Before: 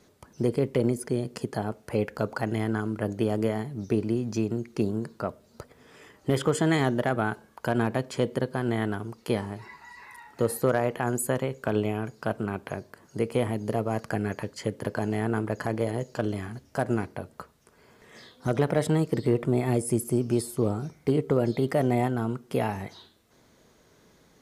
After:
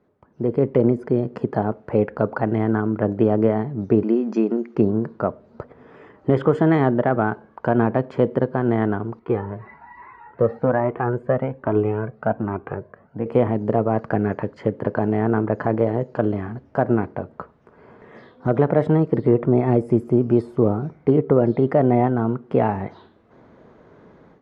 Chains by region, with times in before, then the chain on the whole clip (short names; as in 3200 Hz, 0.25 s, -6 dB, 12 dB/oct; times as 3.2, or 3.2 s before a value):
4.03–4.75 brick-wall FIR band-pass 190–7700 Hz + high shelf 2600 Hz +7.5 dB + notch 3900 Hz, Q 11
9.19–13.26 LPF 2600 Hz + cascading flanger rising 1.2 Hz
whole clip: LPF 1300 Hz 12 dB/oct; low shelf 68 Hz -9.5 dB; AGC gain up to 16 dB; gain -3.5 dB